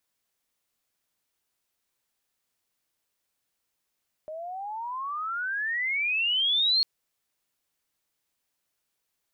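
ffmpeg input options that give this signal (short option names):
-f lavfi -i "aevalsrc='pow(10,(-19.5+15*(t/2.55-1))/20)*sin(2*PI*610*2.55/(34*log(2)/12)*(exp(34*log(2)/12*t/2.55)-1))':d=2.55:s=44100"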